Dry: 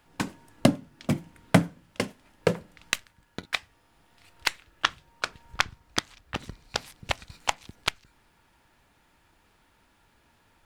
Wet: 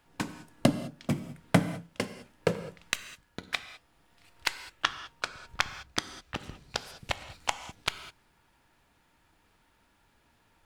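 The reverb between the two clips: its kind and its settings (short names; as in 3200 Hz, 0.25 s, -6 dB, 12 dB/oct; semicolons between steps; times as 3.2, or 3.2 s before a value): non-linear reverb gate 0.23 s flat, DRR 11 dB; gain -3.5 dB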